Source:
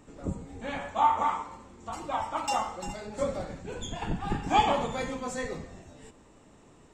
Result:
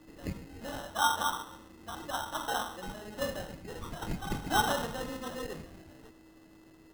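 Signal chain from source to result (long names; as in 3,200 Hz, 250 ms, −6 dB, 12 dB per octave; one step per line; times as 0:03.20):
steady tone 2,000 Hz −51 dBFS
decimation without filtering 19×
level −4.5 dB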